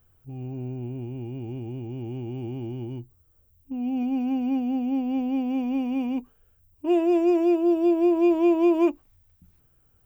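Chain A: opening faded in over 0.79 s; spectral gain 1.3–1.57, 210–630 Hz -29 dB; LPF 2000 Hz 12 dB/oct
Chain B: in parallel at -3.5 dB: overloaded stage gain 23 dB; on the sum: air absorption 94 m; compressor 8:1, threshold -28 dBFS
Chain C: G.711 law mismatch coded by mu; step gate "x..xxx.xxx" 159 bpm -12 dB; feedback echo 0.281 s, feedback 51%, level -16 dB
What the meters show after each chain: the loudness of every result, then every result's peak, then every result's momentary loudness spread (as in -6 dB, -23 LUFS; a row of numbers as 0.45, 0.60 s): -25.0, -31.0, -26.0 LUFS; -12.5, -21.5, -12.0 dBFS; 16, 5, 16 LU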